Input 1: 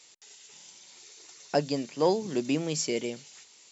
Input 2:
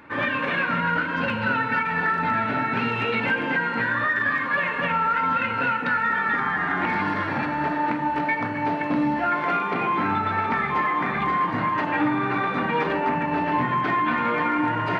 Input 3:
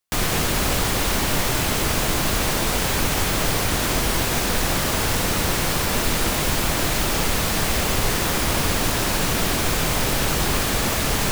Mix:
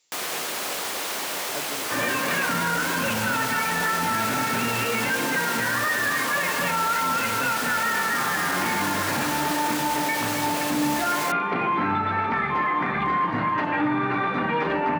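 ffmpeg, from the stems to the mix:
-filter_complex "[0:a]volume=0.251[s0];[1:a]adelay=1800,volume=1[s1];[2:a]highpass=440,volume=0.531[s2];[s0][s1][s2]amix=inputs=3:normalize=0,alimiter=limit=0.168:level=0:latency=1:release=11"

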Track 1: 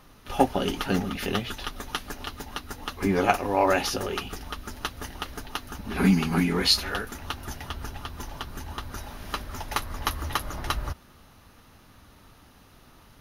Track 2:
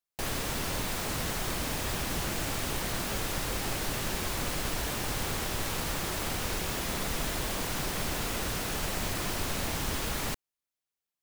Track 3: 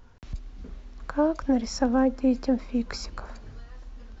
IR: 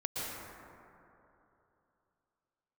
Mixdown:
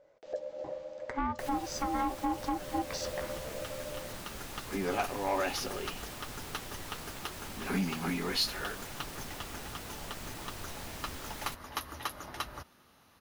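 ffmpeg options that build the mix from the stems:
-filter_complex "[0:a]highpass=f=250:p=1,adelay=1700,volume=0.473[s0];[1:a]adelay=1200,volume=0.447[s1];[2:a]dynaudnorm=f=210:g=3:m=4.22,aeval=exprs='val(0)*sin(2*PI*560*n/s)':c=same,volume=0.501,asplit=2[s2][s3];[s3]apad=whole_len=657439[s4];[s0][s4]sidechaincompress=threshold=0.0178:ratio=8:attack=16:release=1490[s5];[s1][s2]amix=inputs=2:normalize=0,flanger=delay=6.7:depth=8.5:regen=-57:speed=0.77:shape=sinusoidal,alimiter=limit=0.106:level=0:latency=1:release=256,volume=1[s6];[s5][s6]amix=inputs=2:normalize=0,asoftclip=type=tanh:threshold=0.075"

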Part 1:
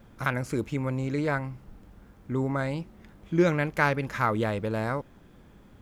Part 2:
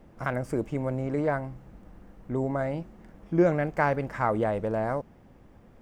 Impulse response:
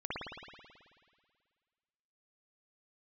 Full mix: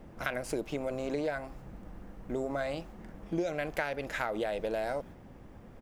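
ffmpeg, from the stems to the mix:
-filter_complex "[0:a]volume=1[s0];[1:a]volume=-1,volume=1.41,asplit=2[s1][s2];[s2]apad=whole_len=260835[s3];[s0][s3]sidechaingate=range=0.0224:threshold=0.00891:ratio=16:detection=peak[s4];[s4][s1]amix=inputs=2:normalize=0,acompressor=threshold=0.0355:ratio=6"

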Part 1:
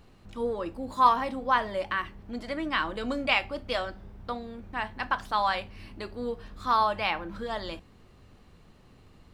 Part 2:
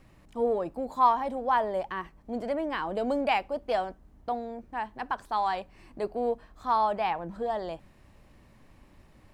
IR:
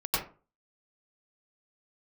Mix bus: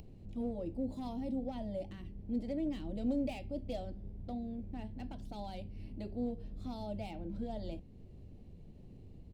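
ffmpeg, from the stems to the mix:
-filter_complex "[0:a]acrossover=split=420|3000[s0][s1][s2];[s1]acompressor=threshold=0.0126:ratio=6[s3];[s0][s3][s2]amix=inputs=3:normalize=0,asoftclip=type=hard:threshold=0.0355,volume=1.12[s4];[1:a]adelay=2.3,volume=0.316[s5];[s4][s5]amix=inputs=2:normalize=0,firequalizer=gain_entry='entry(140,0);entry(650,-9);entry(1200,-28);entry(2300,-17)':delay=0.05:min_phase=1,acompressor=mode=upward:threshold=0.00501:ratio=2.5"

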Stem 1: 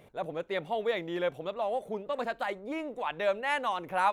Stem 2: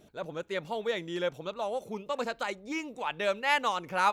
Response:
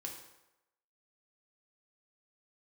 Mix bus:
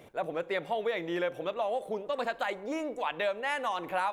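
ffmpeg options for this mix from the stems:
-filter_complex "[0:a]lowshelf=f=130:g=-5.5,volume=1.33,asplit=3[s0][s1][s2];[s1]volume=0.266[s3];[1:a]volume=-1,volume=0.631[s4];[s2]apad=whole_len=181944[s5];[s4][s5]sidechaincompress=threshold=0.0251:ratio=8:attack=16:release=390[s6];[2:a]atrim=start_sample=2205[s7];[s3][s7]afir=irnorm=-1:irlink=0[s8];[s0][s6][s8]amix=inputs=3:normalize=0,acompressor=threshold=0.0447:ratio=6"

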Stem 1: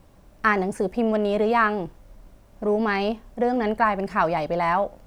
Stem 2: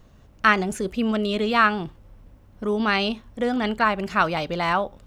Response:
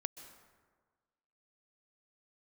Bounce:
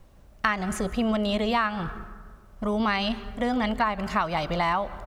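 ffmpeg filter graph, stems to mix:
-filter_complex "[0:a]highpass=f=290:p=1,volume=0.668,asplit=2[s0][s1];[1:a]adelay=0.7,volume=0.668,asplit=2[s2][s3];[s3]volume=0.631[s4];[s1]apad=whole_len=223254[s5];[s2][s5]sidechaingate=range=0.0224:threshold=0.00141:ratio=16:detection=peak[s6];[2:a]atrim=start_sample=2205[s7];[s4][s7]afir=irnorm=-1:irlink=0[s8];[s0][s6][s8]amix=inputs=3:normalize=0,lowshelf=f=80:g=11,acompressor=threshold=0.0891:ratio=6"

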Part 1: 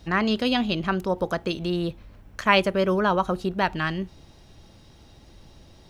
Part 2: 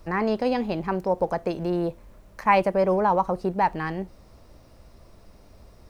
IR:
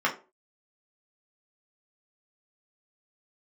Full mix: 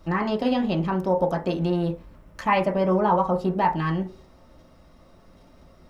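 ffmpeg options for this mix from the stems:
-filter_complex "[0:a]agate=range=0.447:threshold=0.00447:ratio=16:detection=peak,acompressor=threshold=0.0562:ratio=6,volume=0.596[s0];[1:a]lowshelf=f=380:g=8,volume=0.266,asplit=2[s1][s2];[s2]volume=0.668[s3];[2:a]atrim=start_sample=2205[s4];[s3][s4]afir=irnorm=-1:irlink=0[s5];[s0][s1][s5]amix=inputs=3:normalize=0"

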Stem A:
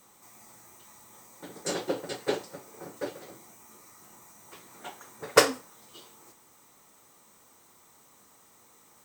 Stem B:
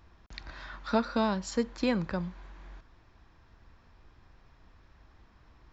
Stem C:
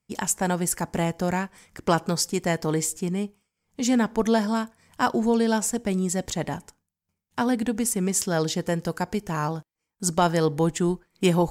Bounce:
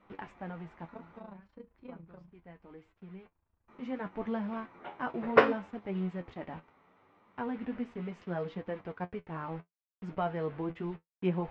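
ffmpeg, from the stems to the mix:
-filter_complex "[0:a]volume=1.33,asplit=3[s0][s1][s2];[s0]atrim=end=1.2,asetpts=PTS-STARTPTS,afade=t=out:st=1.196:d=0.004:c=hsin[s3];[s1]atrim=start=1.2:end=3.68,asetpts=PTS-STARTPTS,volume=0[s4];[s2]atrim=start=3.68,asetpts=PTS-STARTPTS,afade=t=in:d=0.004:c=hsin[s5];[s3][s4][s5]concat=n=3:v=0:a=1[s6];[1:a]equalizer=f=1800:t=o:w=1.1:g=-5,tremolo=f=28:d=0.889,volume=0.237,asplit=2[s7][s8];[2:a]acrusher=bits=5:mix=0:aa=0.000001,flanger=delay=1.4:depth=7.8:regen=-56:speed=0.33:shape=triangular,volume=0.631[s9];[s8]apad=whole_len=507494[s10];[s9][s10]sidechaincompress=threshold=0.001:ratio=8:attack=16:release=1330[s11];[s6][s7][s11]amix=inputs=3:normalize=0,lowpass=f=2500:w=0.5412,lowpass=f=2500:w=1.3066,equalizer=f=1700:t=o:w=0.23:g=-2.5,flanger=delay=9.7:depth=3:regen=48:speed=0.69:shape=triangular"

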